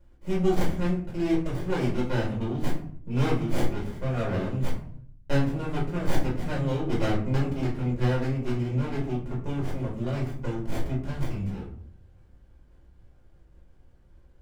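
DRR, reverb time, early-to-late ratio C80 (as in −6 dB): −6.0 dB, 0.60 s, 11.5 dB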